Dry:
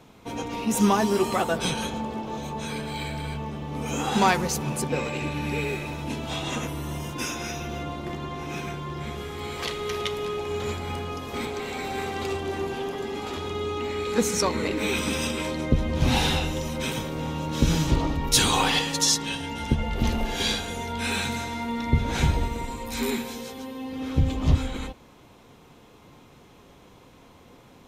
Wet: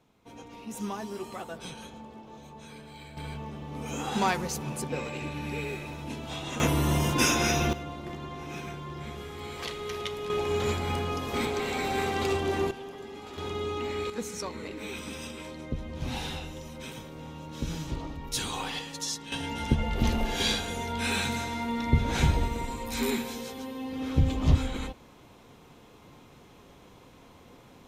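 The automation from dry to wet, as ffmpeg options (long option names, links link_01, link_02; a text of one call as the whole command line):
ffmpeg -i in.wav -af "asetnsamples=nb_out_samples=441:pad=0,asendcmd='3.17 volume volume -6dB;6.6 volume volume 7dB;7.73 volume volume -5.5dB;10.3 volume volume 1.5dB;12.71 volume volume -10.5dB;13.38 volume volume -3dB;14.1 volume volume -12dB;19.32 volume volume -1.5dB',volume=-14.5dB" out.wav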